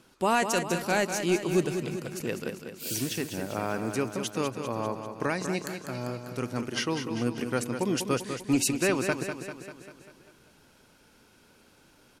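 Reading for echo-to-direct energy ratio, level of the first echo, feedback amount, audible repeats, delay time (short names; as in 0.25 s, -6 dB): -6.0 dB, -8.0 dB, 58%, 6, 0.197 s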